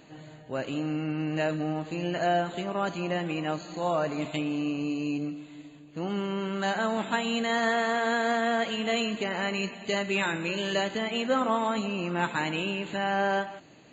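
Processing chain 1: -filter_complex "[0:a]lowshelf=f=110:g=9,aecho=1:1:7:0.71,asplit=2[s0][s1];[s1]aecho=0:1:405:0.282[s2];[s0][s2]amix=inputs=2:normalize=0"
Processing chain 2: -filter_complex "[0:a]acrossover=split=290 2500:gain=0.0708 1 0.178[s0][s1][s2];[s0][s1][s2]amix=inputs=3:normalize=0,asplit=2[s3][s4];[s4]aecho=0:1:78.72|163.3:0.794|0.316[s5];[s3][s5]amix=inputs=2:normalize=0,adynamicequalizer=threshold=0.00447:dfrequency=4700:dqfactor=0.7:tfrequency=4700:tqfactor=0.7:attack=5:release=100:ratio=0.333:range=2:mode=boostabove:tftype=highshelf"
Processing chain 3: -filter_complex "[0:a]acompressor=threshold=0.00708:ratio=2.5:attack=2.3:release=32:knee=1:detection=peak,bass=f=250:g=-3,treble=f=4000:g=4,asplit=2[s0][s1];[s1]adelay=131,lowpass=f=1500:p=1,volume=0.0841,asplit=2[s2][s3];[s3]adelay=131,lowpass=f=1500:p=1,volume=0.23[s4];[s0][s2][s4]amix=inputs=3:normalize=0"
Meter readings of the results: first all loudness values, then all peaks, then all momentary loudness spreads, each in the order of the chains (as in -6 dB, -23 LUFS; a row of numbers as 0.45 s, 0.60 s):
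-26.5 LUFS, -29.0 LUFS, -40.5 LUFS; -12.0 dBFS, -12.0 dBFS, -27.0 dBFS; 7 LU, 9 LU, 4 LU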